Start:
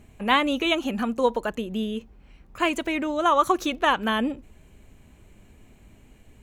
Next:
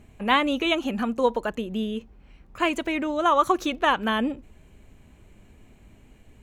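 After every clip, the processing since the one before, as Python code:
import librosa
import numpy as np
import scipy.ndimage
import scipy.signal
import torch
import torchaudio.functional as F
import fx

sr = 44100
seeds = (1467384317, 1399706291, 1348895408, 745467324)

y = fx.high_shelf(x, sr, hz=6200.0, db=-4.5)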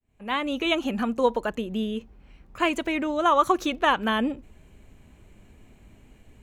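y = fx.fade_in_head(x, sr, length_s=0.76)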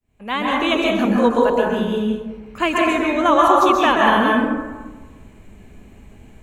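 y = fx.rev_plate(x, sr, seeds[0], rt60_s=1.3, hf_ratio=0.4, predelay_ms=115, drr_db=-3.0)
y = y * librosa.db_to_amplitude(3.5)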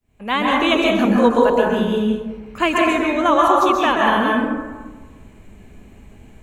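y = fx.rider(x, sr, range_db=5, speed_s=2.0)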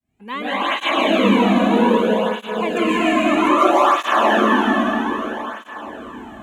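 y = fx.rev_plate(x, sr, seeds[1], rt60_s=4.8, hf_ratio=0.95, predelay_ms=120, drr_db=-8.5)
y = fx.flanger_cancel(y, sr, hz=0.62, depth_ms=2.3)
y = y * librosa.db_to_amplitude(-5.5)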